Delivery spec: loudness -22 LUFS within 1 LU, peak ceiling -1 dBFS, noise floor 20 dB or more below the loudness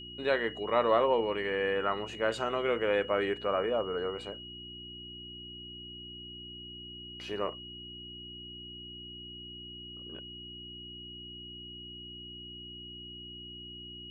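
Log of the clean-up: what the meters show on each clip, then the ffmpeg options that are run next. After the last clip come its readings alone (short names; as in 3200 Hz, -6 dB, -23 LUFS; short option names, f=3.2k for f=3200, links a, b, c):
hum 60 Hz; harmonics up to 360 Hz; hum level -48 dBFS; steady tone 2900 Hz; tone level -44 dBFS; loudness -34.5 LUFS; peak -14.0 dBFS; loudness target -22.0 LUFS
-> -af "bandreject=f=60:t=h:w=4,bandreject=f=120:t=h:w=4,bandreject=f=180:t=h:w=4,bandreject=f=240:t=h:w=4,bandreject=f=300:t=h:w=4,bandreject=f=360:t=h:w=4"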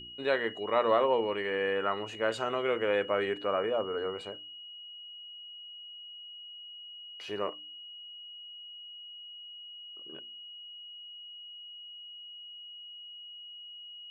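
hum none; steady tone 2900 Hz; tone level -44 dBFS
-> -af "bandreject=f=2.9k:w=30"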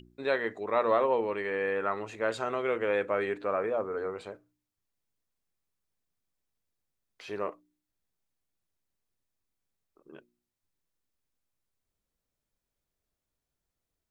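steady tone none; loudness -30.5 LUFS; peak -14.0 dBFS; loudness target -22.0 LUFS
-> -af "volume=8.5dB"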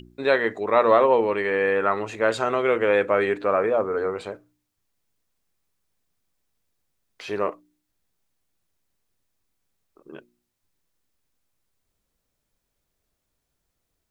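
loudness -22.0 LUFS; peak -5.5 dBFS; noise floor -78 dBFS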